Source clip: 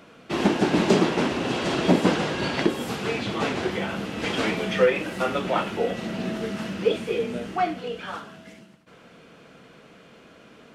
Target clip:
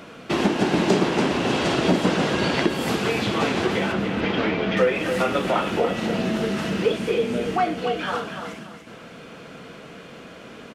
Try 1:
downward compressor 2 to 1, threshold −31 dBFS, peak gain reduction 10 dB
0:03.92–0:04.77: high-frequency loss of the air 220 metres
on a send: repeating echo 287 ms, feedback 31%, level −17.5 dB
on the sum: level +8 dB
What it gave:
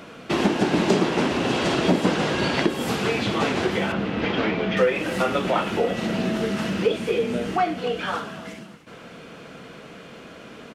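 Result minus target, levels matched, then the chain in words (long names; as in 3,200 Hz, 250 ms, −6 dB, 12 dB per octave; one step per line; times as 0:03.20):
echo-to-direct −9.5 dB
downward compressor 2 to 1, threshold −31 dBFS, peak gain reduction 10 dB
0:03.92–0:04.77: high-frequency loss of the air 220 metres
on a send: repeating echo 287 ms, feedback 31%, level −8 dB
on the sum: level +8 dB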